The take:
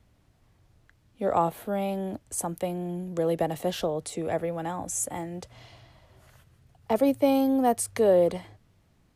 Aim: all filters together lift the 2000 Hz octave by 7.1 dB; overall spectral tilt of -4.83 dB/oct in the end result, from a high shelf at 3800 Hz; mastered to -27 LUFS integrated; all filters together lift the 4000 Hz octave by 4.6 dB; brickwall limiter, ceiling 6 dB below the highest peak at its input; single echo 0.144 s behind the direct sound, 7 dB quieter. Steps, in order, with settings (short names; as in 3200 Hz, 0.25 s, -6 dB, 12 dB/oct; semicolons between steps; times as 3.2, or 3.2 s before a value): bell 2000 Hz +8.5 dB; high shelf 3800 Hz -6.5 dB; bell 4000 Hz +6.5 dB; limiter -16 dBFS; echo 0.144 s -7 dB; gain +1 dB